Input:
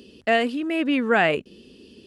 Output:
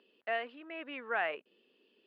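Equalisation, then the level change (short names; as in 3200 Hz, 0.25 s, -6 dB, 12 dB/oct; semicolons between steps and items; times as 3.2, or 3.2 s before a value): BPF 770–6300 Hz; air absorption 470 m; -8.0 dB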